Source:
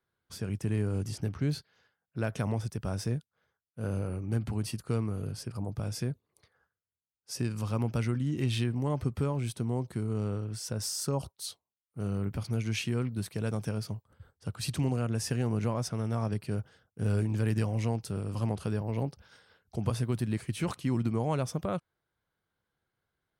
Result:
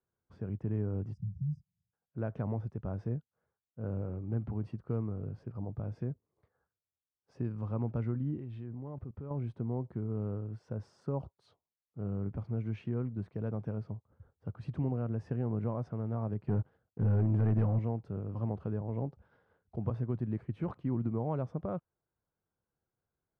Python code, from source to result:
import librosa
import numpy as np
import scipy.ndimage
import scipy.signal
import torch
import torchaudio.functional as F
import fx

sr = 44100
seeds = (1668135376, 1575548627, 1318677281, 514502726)

y = fx.spec_erase(x, sr, start_s=1.13, length_s=0.8, low_hz=210.0, high_hz=4800.0)
y = fx.level_steps(y, sr, step_db=19, at=(8.38, 9.31))
y = fx.leveller(y, sr, passes=2, at=(16.47, 17.79))
y = scipy.signal.sosfilt(scipy.signal.butter(2, 1000.0, 'lowpass', fs=sr, output='sos'), y)
y = y * 10.0 ** (-3.5 / 20.0)